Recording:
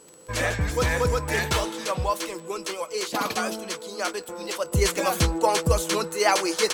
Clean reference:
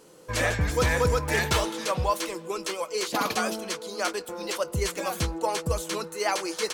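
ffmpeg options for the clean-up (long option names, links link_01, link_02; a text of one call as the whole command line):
ffmpeg -i in.wav -af "adeclick=threshold=4,bandreject=frequency=7900:width=30,asetnsamples=nb_out_samples=441:pad=0,asendcmd='4.72 volume volume -6dB',volume=0dB" out.wav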